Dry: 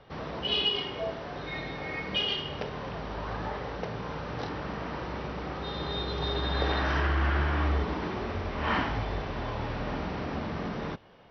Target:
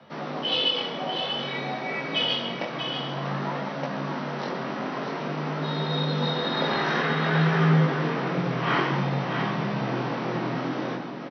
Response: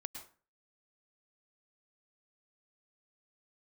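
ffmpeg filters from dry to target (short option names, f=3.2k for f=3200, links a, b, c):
-filter_complex "[0:a]aecho=1:1:643:0.473,flanger=delay=16:depth=7.6:speed=0.52,afreqshift=88,asplit=2[a][b];[1:a]atrim=start_sample=2205,asetrate=39249,aresample=44100[c];[b][c]afir=irnorm=-1:irlink=0,volume=4dB[d];[a][d]amix=inputs=2:normalize=0"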